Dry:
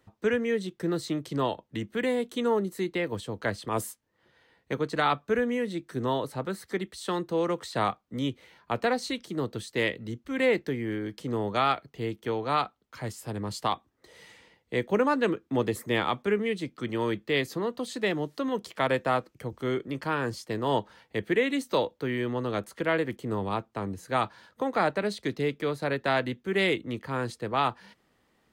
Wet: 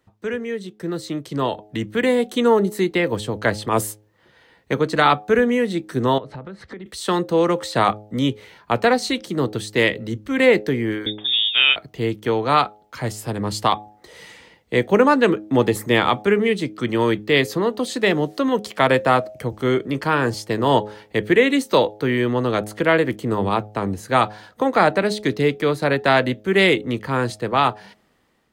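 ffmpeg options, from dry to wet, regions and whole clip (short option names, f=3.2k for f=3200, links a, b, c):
-filter_complex "[0:a]asettb=1/sr,asplit=3[a][b][c];[a]atrim=end=6.184[d];[b]atrim=start=6.18:end=6.86,asetpts=PTS-STARTPTS,afade=t=in:d=0.004:c=qsin,afade=t=out:st=0.676:d=0.004:c=qsin,lowpass=3.2k,lowshelf=f=180:g=9,acompressor=threshold=-40dB:ratio=20:attack=3.2:release=140:knee=1:detection=peak[e];[c]atrim=start=6.856[f];[d][e]acrossfade=d=0.004:c1=hsin:c2=qsin[g];[g][f]acrossfade=d=0.004:c1=qsin:c2=hsin,asettb=1/sr,asplit=3[h][i][j];[h]atrim=end=11.064[k];[i]atrim=start=11.06:end=11.76,asetpts=PTS-STARTPTS,afade=t=in:d=0.004:c=qsin,afade=t=out:st=0.696:d=0.004:c=qsin,aemphasis=mode=reproduction:type=75kf,lowpass=f=3.2k:t=q:w=0.5098,lowpass=f=3.2k:t=q:w=0.6013,lowpass=f=3.2k:t=q:w=0.9,lowpass=f=3.2k:t=q:w=2.563,afreqshift=-3800[l];[j]atrim=start=11.756[m];[k][l]acrossfade=d=0.004:c1=hsin:c2=qsin[n];[n][m]acrossfade=d=0.004:c1=qsin:c2=hsin,bandreject=f=105.6:t=h:w=4,bandreject=f=211.2:t=h:w=4,bandreject=f=316.8:t=h:w=4,bandreject=f=422.4:t=h:w=4,bandreject=f=528:t=h:w=4,bandreject=f=633.6:t=h:w=4,bandreject=f=739.2:t=h:w=4,bandreject=f=844.8:t=h:w=4,dynaudnorm=f=630:g=5:m=11dB"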